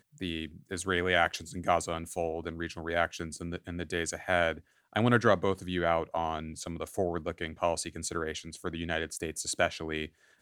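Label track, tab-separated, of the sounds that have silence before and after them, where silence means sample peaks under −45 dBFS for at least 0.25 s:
4.930000	10.070000	sound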